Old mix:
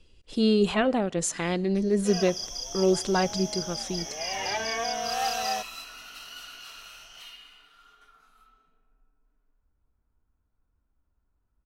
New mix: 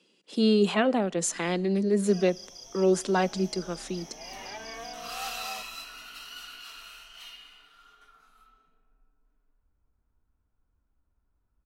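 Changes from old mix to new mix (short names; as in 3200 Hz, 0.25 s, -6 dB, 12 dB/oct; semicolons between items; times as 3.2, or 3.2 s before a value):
speech: add steep high-pass 170 Hz 48 dB/oct; first sound -11.0 dB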